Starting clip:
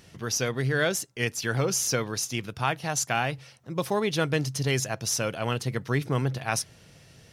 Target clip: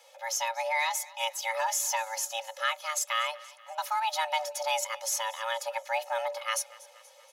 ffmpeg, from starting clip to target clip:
-filter_complex "[0:a]acrossover=split=2500[a][b];[a]crystalizer=i=4:c=0[c];[c][b]amix=inputs=2:normalize=0,highshelf=f=11k:g=7.5,aecho=1:1:2.4:0.86,afreqshift=450,aecho=1:1:238|476|714|952:0.0891|0.0499|0.0279|0.0157,volume=-7dB"

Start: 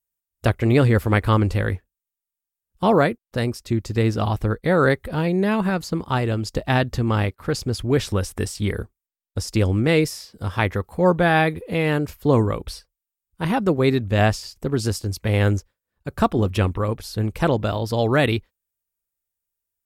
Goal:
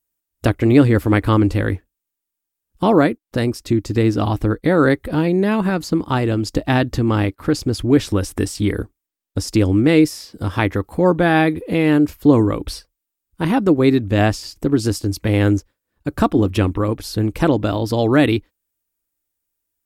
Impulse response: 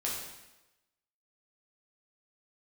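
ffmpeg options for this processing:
-filter_complex "[0:a]equalizer=f=300:w=3.9:g=11.5,asplit=2[a][b];[b]acompressor=threshold=-26dB:ratio=6,volume=1dB[c];[a][c]amix=inputs=2:normalize=0,volume=-1dB"

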